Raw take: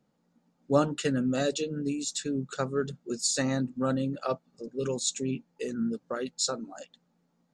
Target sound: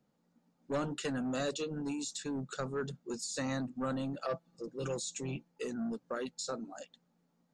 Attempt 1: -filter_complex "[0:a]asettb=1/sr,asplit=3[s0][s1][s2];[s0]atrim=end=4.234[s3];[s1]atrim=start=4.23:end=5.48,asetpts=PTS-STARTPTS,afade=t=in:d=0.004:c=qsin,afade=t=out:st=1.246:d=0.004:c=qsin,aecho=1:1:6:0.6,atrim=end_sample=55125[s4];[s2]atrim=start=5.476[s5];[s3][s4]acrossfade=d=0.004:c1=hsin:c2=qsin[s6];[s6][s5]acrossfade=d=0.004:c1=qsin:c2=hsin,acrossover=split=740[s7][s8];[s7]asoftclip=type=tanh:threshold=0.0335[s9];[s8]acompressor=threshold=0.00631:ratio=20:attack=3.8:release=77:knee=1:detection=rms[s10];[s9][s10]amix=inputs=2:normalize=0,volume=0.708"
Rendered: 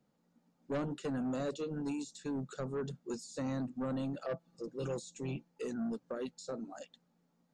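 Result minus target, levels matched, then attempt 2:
compression: peak gain reduction +11 dB
-filter_complex "[0:a]asettb=1/sr,asplit=3[s0][s1][s2];[s0]atrim=end=4.234[s3];[s1]atrim=start=4.23:end=5.48,asetpts=PTS-STARTPTS,afade=t=in:d=0.004:c=qsin,afade=t=out:st=1.246:d=0.004:c=qsin,aecho=1:1:6:0.6,atrim=end_sample=55125[s4];[s2]atrim=start=5.476[s5];[s3][s4]acrossfade=d=0.004:c1=hsin:c2=qsin[s6];[s6][s5]acrossfade=d=0.004:c1=qsin:c2=hsin,acrossover=split=740[s7][s8];[s7]asoftclip=type=tanh:threshold=0.0335[s9];[s8]acompressor=threshold=0.0237:ratio=20:attack=3.8:release=77:knee=1:detection=rms[s10];[s9][s10]amix=inputs=2:normalize=0,volume=0.708"

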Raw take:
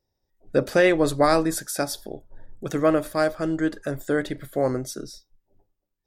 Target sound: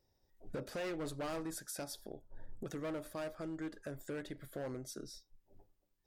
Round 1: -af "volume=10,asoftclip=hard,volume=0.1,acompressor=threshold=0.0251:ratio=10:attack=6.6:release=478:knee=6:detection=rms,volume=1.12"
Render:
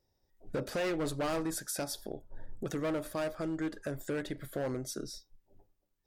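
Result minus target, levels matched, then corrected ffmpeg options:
compression: peak gain reduction -7 dB
-af "volume=10,asoftclip=hard,volume=0.1,acompressor=threshold=0.01:ratio=10:attack=6.6:release=478:knee=6:detection=rms,volume=1.12"

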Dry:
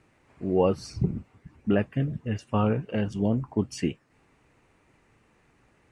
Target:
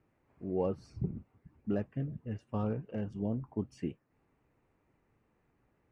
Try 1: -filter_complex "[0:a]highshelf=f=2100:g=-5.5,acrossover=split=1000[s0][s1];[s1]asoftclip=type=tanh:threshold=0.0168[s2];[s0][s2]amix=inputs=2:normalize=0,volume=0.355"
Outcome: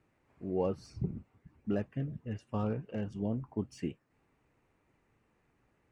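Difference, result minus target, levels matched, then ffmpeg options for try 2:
4 kHz band +5.0 dB
-filter_complex "[0:a]highshelf=f=2100:g=-13.5,acrossover=split=1000[s0][s1];[s1]asoftclip=type=tanh:threshold=0.0168[s2];[s0][s2]amix=inputs=2:normalize=0,volume=0.355"

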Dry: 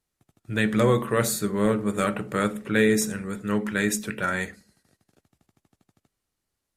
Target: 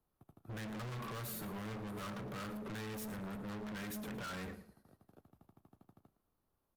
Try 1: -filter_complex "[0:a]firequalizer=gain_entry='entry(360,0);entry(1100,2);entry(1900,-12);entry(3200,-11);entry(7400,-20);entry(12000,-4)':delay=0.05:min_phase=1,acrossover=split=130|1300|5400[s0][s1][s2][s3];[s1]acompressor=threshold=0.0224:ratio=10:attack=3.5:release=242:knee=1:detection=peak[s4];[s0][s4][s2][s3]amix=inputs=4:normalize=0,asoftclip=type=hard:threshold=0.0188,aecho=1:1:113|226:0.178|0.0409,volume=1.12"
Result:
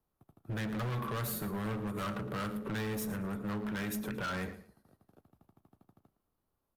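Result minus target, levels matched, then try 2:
hard clipper: distortion -4 dB
-filter_complex "[0:a]firequalizer=gain_entry='entry(360,0);entry(1100,2);entry(1900,-12);entry(3200,-11);entry(7400,-20);entry(12000,-4)':delay=0.05:min_phase=1,acrossover=split=130|1300|5400[s0][s1][s2][s3];[s1]acompressor=threshold=0.0224:ratio=10:attack=3.5:release=242:knee=1:detection=peak[s4];[s0][s4][s2][s3]amix=inputs=4:normalize=0,asoftclip=type=hard:threshold=0.00668,aecho=1:1:113|226:0.178|0.0409,volume=1.12"

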